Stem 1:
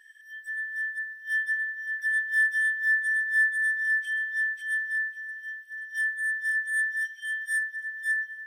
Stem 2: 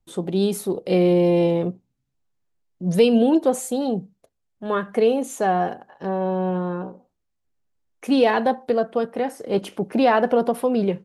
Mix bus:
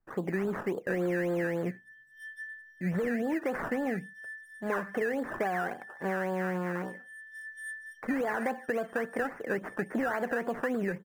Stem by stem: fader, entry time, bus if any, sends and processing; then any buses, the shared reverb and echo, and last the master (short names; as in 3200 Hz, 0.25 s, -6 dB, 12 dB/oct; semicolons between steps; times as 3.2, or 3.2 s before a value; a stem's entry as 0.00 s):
-9.5 dB, 0.90 s, no send, echo send -11.5 dB, steep high-pass 1900 Hz; auto duck -9 dB, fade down 0.30 s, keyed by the second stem
-4.0 dB, 0.00 s, no send, no echo send, limiter -14.5 dBFS, peak gain reduction 9 dB; decimation with a swept rate 16×, swing 60% 3.6 Hz; resonant high shelf 2500 Hz -12 dB, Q 3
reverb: off
echo: feedback echo 0.727 s, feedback 46%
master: bell 61 Hz -10 dB 1.1 oct; compressor, threshold -27 dBFS, peak gain reduction 7 dB